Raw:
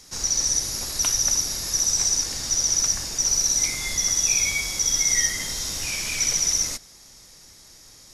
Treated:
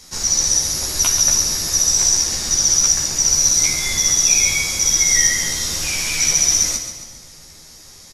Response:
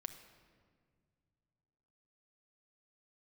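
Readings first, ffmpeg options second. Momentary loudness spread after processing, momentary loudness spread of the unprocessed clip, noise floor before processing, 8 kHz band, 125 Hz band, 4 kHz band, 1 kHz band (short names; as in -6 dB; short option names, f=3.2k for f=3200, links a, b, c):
7 LU, 7 LU, -49 dBFS, +6.5 dB, +7.0 dB, +6.5 dB, +6.5 dB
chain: -filter_complex "[0:a]aecho=1:1:136|272|408|544|680:0.355|0.167|0.0784|0.0368|0.0173,asplit=2[a][b];[1:a]atrim=start_sample=2205,adelay=13[c];[b][c]afir=irnorm=-1:irlink=0,volume=1.5dB[d];[a][d]amix=inputs=2:normalize=0,volume=3.5dB"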